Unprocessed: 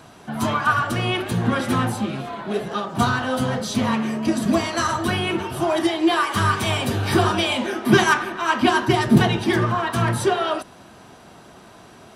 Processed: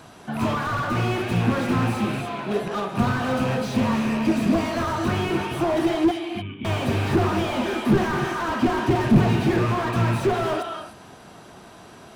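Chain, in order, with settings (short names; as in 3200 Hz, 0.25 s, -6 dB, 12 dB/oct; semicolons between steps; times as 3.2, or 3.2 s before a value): rattling part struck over -26 dBFS, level -16 dBFS; 6.11–6.65 vocal tract filter i; non-linear reverb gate 0.32 s rising, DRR 9 dB; slew limiter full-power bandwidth 68 Hz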